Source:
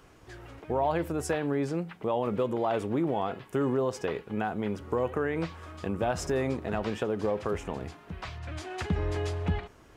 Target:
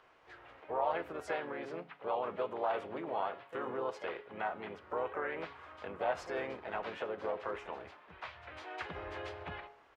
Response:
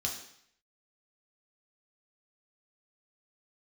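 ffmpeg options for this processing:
-filter_complex "[0:a]asplit=3[a][b][c];[b]asetrate=37084,aresample=44100,atempo=1.18921,volume=-6dB[d];[c]asetrate=55563,aresample=44100,atempo=0.793701,volume=-9dB[e];[a][d][e]amix=inputs=3:normalize=0,acrossover=split=490 3700:gain=0.112 1 0.1[f][g][h];[f][g][h]amix=inputs=3:normalize=0,bandreject=f=139.3:t=h:w=4,bandreject=f=278.6:t=h:w=4,bandreject=f=417.9:t=h:w=4,bandreject=f=557.2:t=h:w=4,bandreject=f=696.5:t=h:w=4,bandreject=f=835.8:t=h:w=4,bandreject=f=975.1:t=h:w=4,bandreject=f=1.1144k:t=h:w=4,bandreject=f=1.2537k:t=h:w=4,bandreject=f=1.393k:t=h:w=4,bandreject=f=1.5323k:t=h:w=4,bandreject=f=1.6716k:t=h:w=4,bandreject=f=1.8109k:t=h:w=4,bandreject=f=1.9502k:t=h:w=4,bandreject=f=2.0895k:t=h:w=4,bandreject=f=2.2288k:t=h:w=4,bandreject=f=2.3681k:t=h:w=4,bandreject=f=2.5074k:t=h:w=4,bandreject=f=2.6467k:t=h:w=4,bandreject=f=2.786k:t=h:w=4,bandreject=f=2.9253k:t=h:w=4,bandreject=f=3.0646k:t=h:w=4,bandreject=f=3.2039k:t=h:w=4,bandreject=f=3.3432k:t=h:w=4,bandreject=f=3.4825k:t=h:w=4,bandreject=f=3.6218k:t=h:w=4,bandreject=f=3.7611k:t=h:w=4,bandreject=f=3.9004k:t=h:w=4,bandreject=f=4.0397k:t=h:w=4,bandreject=f=4.179k:t=h:w=4,bandreject=f=4.3183k:t=h:w=4,bandreject=f=4.4576k:t=h:w=4,bandreject=f=4.5969k:t=h:w=4,bandreject=f=4.7362k:t=h:w=4,bandreject=f=4.8755k:t=h:w=4,bandreject=f=5.0148k:t=h:w=4,bandreject=f=5.1541k:t=h:w=4,bandreject=f=5.2934k:t=h:w=4,bandreject=f=5.4327k:t=h:w=4,volume=-4dB"

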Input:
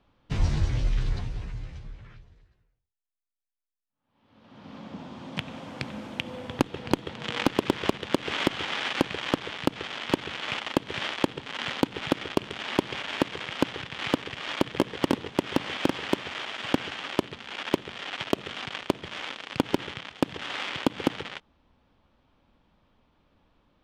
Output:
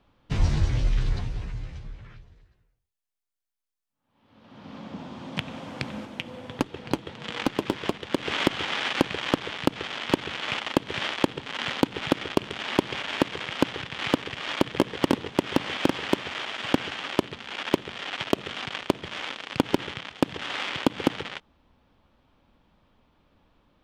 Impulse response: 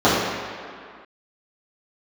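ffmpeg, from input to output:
-filter_complex "[0:a]asettb=1/sr,asplit=3[a][b][c];[a]atrim=end=6.054[d];[b]atrim=start=6.05:end=8.15,asetpts=PTS-STARTPTS,afade=t=in:d=0.004:c=qsin,afade=t=out:st=2.096:d=0.004:c=qsin,flanger=delay=2:depth=7.6:regen=-59:speed=1.5:shape=triangular[e];[c]atrim=start=8.146[f];[d][e]acrossfade=d=0.004:c1=hsin:c2=qsin[g];[g][f]acrossfade=d=0.004:c1=qsin:c2=hsin,volume=2dB"

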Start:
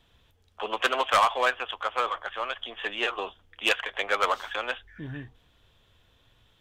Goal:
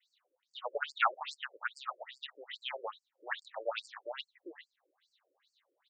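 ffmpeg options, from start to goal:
-af "asetrate=49392,aresample=44100,adynamicequalizer=threshold=0.00501:dfrequency=4100:dqfactor=2.9:tfrequency=4100:tqfactor=2.9:attack=5:release=100:ratio=0.375:range=2.5:mode=cutabove:tftype=bell,afftfilt=real='re*between(b*sr/1024,410*pow(6400/410,0.5+0.5*sin(2*PI*2.4*pts/sr))/1.41,410*pow(6400/410,0.5+0.5*sin(2*PI*2.4*pts/sr))*1.41)':imag='im*between(b*sr/1024,410*pow(6400/410,0.5+0.5*sin(2*PI*2.4*pts/sr))/1.41,410*pow(6400/410,0.5+0.5*sin(2*PI*2.4*pts/sr))*1.41)':win_size=1024:overlap=0.75,volume=-3.5dB"

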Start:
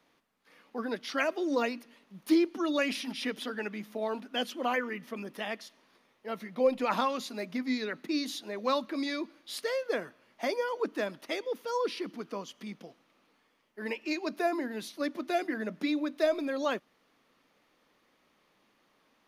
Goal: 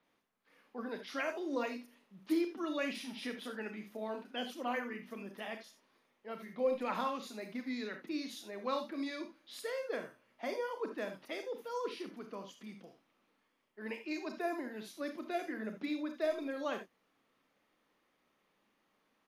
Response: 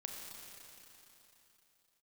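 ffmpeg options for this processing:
-filter_complex "[0:a]acrossover=split=4800[a][b];[b]adelay=30[c];[a][c]amix=inputs=2:normalize=0[d];[1:a]atrim=start_sample=2205,atrim=end_sample=3969[e];[d][e]afir=irnorm=-1:irlink=0,volume=-3dB"

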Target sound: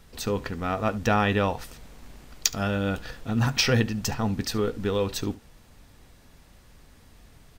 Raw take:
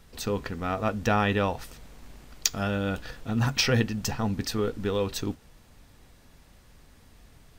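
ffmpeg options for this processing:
-af "aecho=1:1:71:0.0944,volume=1.5dB"

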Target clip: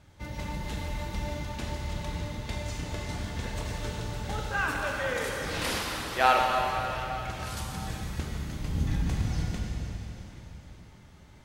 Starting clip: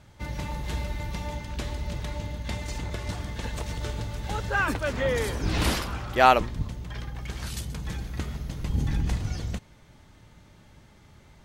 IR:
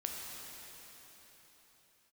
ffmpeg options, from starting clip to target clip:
-filter_complex "[0:a]asettb=1/sr,asplit=3[a][b][c];[a]atrim=end=4.404[d];[b]atrim=start=4.4:end=6.75,asetpts=PTS-STARTPTS,afade=t=in:d=0.004:c=qsin,afade=t=out:st=2.346:d=0.004:c=qsin,lowshelf=f=420:g=-10[e];[c]atrim=start=6.746[f];[d][e]acrossfade=d=0.004:c1=hsin:c2=qsin[g];[g][f]acrossfade=d=0.004:c1=qsin:c2=hsin[h];[1:a]atrim=start_sample=2205,asetrate=48510,aresample=44100[i];[h][i]afir=irnorm=-1:irlink=0,volume=-1dB"

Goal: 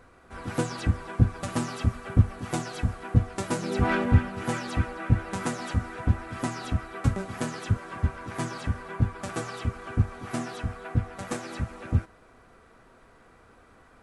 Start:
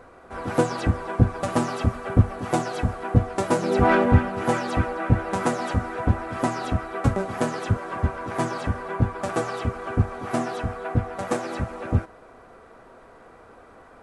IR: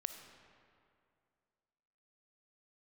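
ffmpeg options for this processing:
-af "equalizer=f=620:w=0.56:g=-9.5,volume=-1dB"

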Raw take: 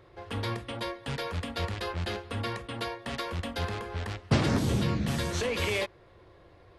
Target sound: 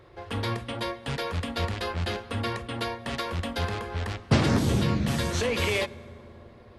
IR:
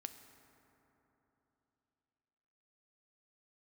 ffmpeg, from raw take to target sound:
-filter_complex "[0:a]asplit=2[a][b];[1:a]atrim=start_sample=2205,asetrate=37485,aresample=44100[c];[b][c]afir=irnorm=-1:irlink=0,volume=-3.5dB[d];[a][d]amix=inputs=2:normalize=0"

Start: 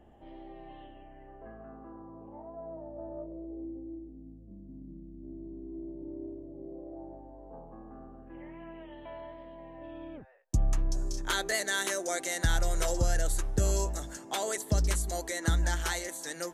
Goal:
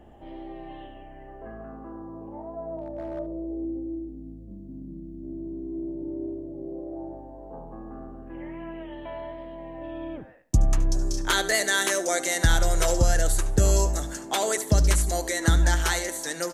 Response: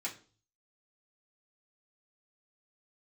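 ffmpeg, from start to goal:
-filter_complex "[0:a]asplit=2[a][b];[b]aecho=0:1:94|188|282:0.0891|0.0357|0.0143[c];[a][c]amix=inputs=2:normalize=0,asettb=1/sr,asplit=3[d][e][f];[d]atrim=end=2.774[g];[e]atrim=start=2.77:end=3.19,asetpts=PTS-STARTPTS,afade=t=in:d=0.004:c=qsin,afade=t=out:st=0.416:d=0.004:c=qsin,asoftclip=type=hard:threshold=-36dB[h];[f]atrim=start=3.186[i];[g][h]acrossfade=d=0.004:c1=hsin:c2=qsin[j];[j][i]acrossfade=d=0.004:c1=qsin:c2=hsin,asplit=2[k][l];[l]aecho=0:1:73:0.168[m];[k][m]amix=inputs=2:normalize=0,volume=7dB"

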